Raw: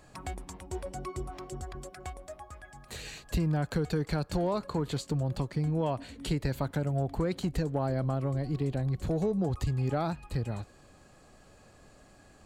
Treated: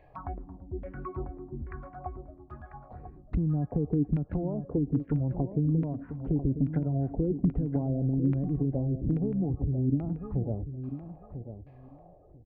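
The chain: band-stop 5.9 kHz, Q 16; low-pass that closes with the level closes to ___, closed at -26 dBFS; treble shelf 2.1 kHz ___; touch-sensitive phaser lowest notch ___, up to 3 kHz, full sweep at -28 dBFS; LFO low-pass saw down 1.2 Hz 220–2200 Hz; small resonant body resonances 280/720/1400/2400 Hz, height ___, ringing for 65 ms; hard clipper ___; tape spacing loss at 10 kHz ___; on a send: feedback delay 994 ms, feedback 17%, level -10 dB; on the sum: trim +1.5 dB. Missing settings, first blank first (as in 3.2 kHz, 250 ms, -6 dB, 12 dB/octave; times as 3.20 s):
310 Hz, +5.5 dB, 210 Hz, 6 dB, -17.5 dBFS, 30 dB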